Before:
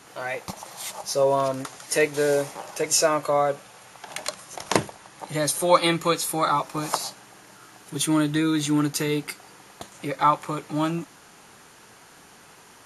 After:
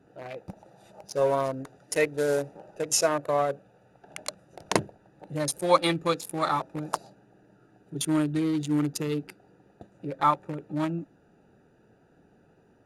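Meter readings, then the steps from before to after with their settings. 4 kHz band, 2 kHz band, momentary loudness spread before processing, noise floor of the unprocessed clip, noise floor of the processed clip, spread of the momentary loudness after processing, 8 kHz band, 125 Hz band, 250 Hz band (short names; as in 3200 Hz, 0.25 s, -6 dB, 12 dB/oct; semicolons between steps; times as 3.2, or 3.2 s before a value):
-6.0 dB, -5.5 dB, 17 LU, -51 dBFS, -62 dBFS, 17 LU, -6.0 dB, -2.5 dB, -3.5 dB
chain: Wiener smoothing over 41 samples; gain -2.5 dB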